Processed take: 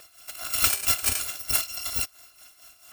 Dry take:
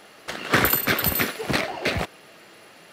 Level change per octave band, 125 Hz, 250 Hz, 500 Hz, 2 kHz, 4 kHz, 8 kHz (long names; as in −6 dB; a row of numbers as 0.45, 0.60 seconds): −12.0, −19.5, −17.5, −10.5, −1.0, +7.0 decibels